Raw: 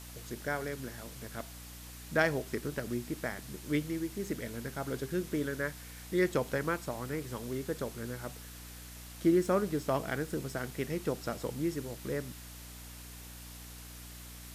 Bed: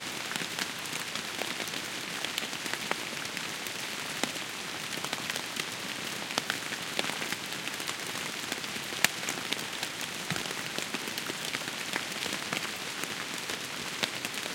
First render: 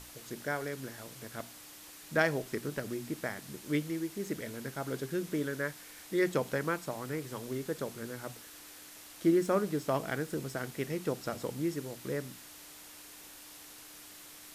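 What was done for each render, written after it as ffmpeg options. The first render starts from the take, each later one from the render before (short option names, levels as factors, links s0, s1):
-af "bandreject=f=60:t=h:w=6,bandreject=f=120:t=h:w=6,bandreject=f=180:t=h:w=6,bandreject=f=240:t=h:w=6"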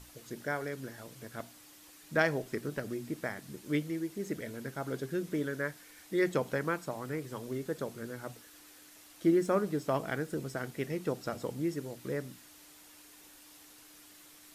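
-af "afftdn=nr=6:nf=-51"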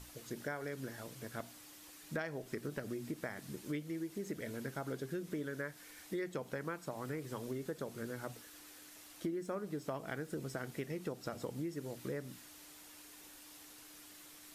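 -af "acompressor=threshold=0.0141:ratio=6"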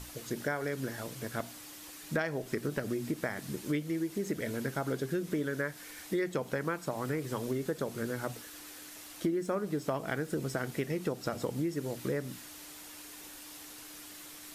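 -af "volume=2.37"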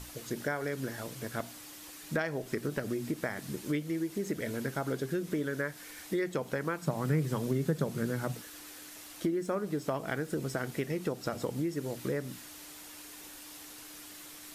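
-filter_complex "[0:a]asettb=1/sr,asplit=3[s0][s1][s2];[s0]atrim=end=6.824[s3];[s1]atrim=start=6.82:end=8.42,asetpts=PTS-STARTPTS,afade=t=in:d=0.004:c=qsin,afade=t=out:st=1.596:d=0.004:c=qsin,equalizer=f=160:t=o:w=0.71:g=12.5[s4];[s2]atrim=start=8.416[s5];[s3][s4]acrossfade=d=0.004:c1=hsin:c2=qsin[s6];[s6][s5]acrossfade=d=0.004:c1=qsin:c2=hsin"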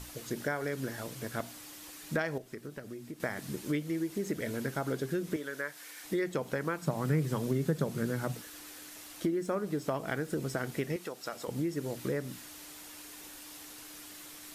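-filter_complex "[0:a]asettb=1/sr,asplit=3[s0][s1][s2];[s0]atrim=end=5.364[s3];[s1]atrim=start=5.36:end=6.04,asetpts=PTS-STARTPTS,afade=t=in:d=0.004:c=qsin,afade=t=out:st=0.676:d=0.004:c=qsin,highpass=f=720:p=1[s4];[s2]atrim=start=6.036[s5];[s3][s4]acrossfade=d=0.004:c1=hsin:c2=qsin[s6];[s6][s5]acrossfade=d=0.004:c1=qsin:c2=hsin,asettb=1/sr,asplit=3[s7][s8][s9];[s7]atrim=end=10.964[s10];[s8]atrim=start=10.96:end=11.48,asetpts=PTS-STARTPTS,afade=t=in:d=0.004:c=qsin,afade=t=out:st=0.516:d=0.004:c=qsin,highpass=f=850:p=1[s11];[s9]atrim=start=11.476[s12];[s10][s11]acrossfade=d=0.004:c1=hsin:c2=qsin[s13];[s13][s12]acrossfade=d=0.004:c1=qsin:c2=hsin,asplit=3[s14][s15][s16];[s14]atrim=end=2.382[s17];[s15]atrim=start=2.378:end=3.202,asetpts=PTS-STARTPTS,volume=0.335[s18];[s16]atrim=start=3.198[s19];[s17][s18]acrossfade=d=0.004:c1=hsin:c2=hsin[s20];[s20][s19]acrossfade=d=0.004:c1=hsin:c2=hsin"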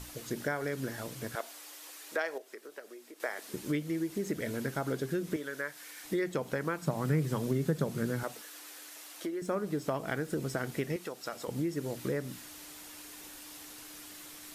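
-filter_complex "[0:a]asettb=1/sr,asplit=3[s0][s1][s2];[s0]atrim=end=1.354[s3];[s1]atrim=start=1.35:end=3.54,asetpts=PTS-STARTPTS,afade=t=in:d=0.004:c=qsin,afade=t=out:st=2.186:d=0.004:c=qsin,highpass=f=390:w=0.5412,highpass=f=390:w=1.3066[s4];[s2]atrim=start=3.536[s5];[s3][s4]acrossfade=d=0.004:c1=hsin:c2=qsin[s6];[s6][s5]acrossfade=d=0.004:c1=qsin:c2=hsin,asettb=1/sr,asplit=3[s7][s8][s9];[s7]atrim=end=8.234[s10];[s8]atrim=start=8.23:end=9.42,asetpts=PTS-STARTPTS,afade=t=in:d=0.004:c=qsin,afade=t=out:st=1.186:d=0.004:c=qsin,highpass=420[s11];[s9]atrim=start=9.416[s12];[s10][s11]acrossfade=d=0.004:c1=hsin:c2=qsin[s13];[s13][s12]acrossfade=d=0.004:c1=qsin:c2=hsin"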